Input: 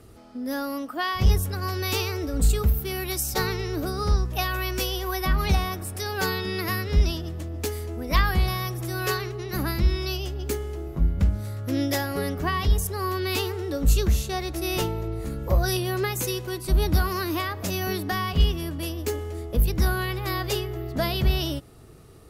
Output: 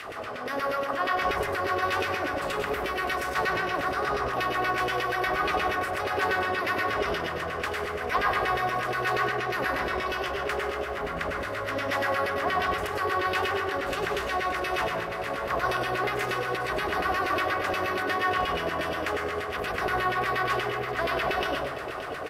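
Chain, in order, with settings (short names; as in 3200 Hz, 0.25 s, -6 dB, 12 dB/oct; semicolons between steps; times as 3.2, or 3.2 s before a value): per-bin compression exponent 0.4; high shelf 11000 Hz +8 dB; de-hum 332.2 Hz, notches 29; LFO band-pass saw down 8.4 Hz 440–2600 Hz; echo 0.573 s -13.5 dB; on a send at -2 dB: reverb RT60 0.60 s, pre-delay 93 ms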